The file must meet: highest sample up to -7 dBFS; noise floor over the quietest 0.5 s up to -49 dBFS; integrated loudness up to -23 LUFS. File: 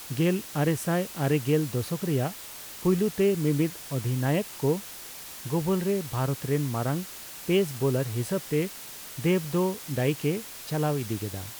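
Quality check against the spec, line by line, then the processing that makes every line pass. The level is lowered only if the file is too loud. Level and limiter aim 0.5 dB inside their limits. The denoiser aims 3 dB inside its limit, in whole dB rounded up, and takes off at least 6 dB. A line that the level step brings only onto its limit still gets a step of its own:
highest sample -12.5 dBFS: pass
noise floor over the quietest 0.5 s -42 dBFS: fail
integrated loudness -27.5 LUFS: pass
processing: noise reduction 10 dB, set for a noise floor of -42 dBFS

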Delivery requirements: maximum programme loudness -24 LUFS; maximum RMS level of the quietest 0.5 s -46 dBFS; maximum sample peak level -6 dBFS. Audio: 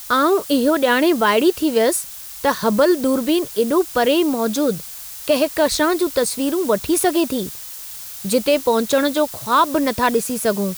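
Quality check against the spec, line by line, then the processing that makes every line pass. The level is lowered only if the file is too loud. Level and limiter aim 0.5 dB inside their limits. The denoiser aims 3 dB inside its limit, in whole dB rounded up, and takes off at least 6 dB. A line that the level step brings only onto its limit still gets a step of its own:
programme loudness -18.0 LUFS: fail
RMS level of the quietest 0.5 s -34 dBFS: fail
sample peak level -5.0 dBFS: fail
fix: noise reduction 9 dB, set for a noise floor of -34 dBFS; trim -6.5 dB

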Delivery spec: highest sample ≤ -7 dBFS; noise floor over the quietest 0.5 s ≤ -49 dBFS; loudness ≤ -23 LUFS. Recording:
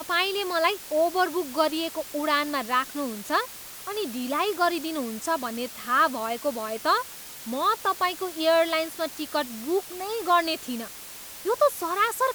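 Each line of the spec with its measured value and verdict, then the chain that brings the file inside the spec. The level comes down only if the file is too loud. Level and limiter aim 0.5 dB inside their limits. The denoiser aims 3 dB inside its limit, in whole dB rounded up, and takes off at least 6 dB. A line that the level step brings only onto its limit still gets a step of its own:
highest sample -8.0 dBFS: pass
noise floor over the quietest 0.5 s -41 dBFS: fail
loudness -26.0 LUFS: pass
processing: noise reduction 11 dB, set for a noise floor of -41 dBFS

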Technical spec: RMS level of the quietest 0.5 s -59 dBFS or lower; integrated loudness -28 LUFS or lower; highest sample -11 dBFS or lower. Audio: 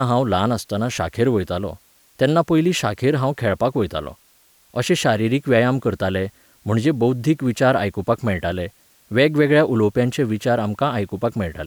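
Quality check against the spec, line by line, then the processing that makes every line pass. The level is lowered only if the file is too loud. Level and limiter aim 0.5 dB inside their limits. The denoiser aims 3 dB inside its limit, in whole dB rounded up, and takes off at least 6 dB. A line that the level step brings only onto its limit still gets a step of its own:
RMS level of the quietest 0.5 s -56 dBFS: fail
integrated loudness -20.0 LUFS: fail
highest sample -4.5 dBFS: fail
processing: trim -8.5 dB

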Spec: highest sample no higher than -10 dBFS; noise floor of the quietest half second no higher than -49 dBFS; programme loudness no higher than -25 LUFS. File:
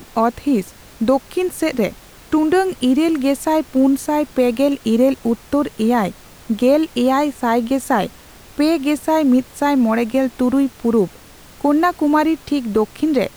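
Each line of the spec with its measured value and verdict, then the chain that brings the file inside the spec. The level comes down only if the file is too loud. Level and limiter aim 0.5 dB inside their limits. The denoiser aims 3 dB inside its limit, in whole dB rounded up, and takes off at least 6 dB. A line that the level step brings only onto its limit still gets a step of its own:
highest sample -5.0 dBFS: fail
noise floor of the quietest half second -42 dBFS: fail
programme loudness -18.0 LUFS: fail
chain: trim -7.5 dB

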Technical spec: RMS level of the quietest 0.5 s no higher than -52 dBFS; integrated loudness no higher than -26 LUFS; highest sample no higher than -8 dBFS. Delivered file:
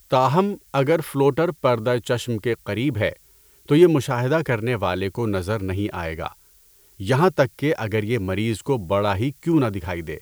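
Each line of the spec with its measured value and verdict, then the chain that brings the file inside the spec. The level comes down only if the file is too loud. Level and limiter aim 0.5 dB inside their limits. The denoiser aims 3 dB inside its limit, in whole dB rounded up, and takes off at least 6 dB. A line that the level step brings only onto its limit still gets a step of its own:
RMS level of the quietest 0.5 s -54 dBFS: pass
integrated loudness -22.0 LUFS: fail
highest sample -3.5 dBFS: fail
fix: trim -4.5 dB; peak limiter -8.5 dBFS

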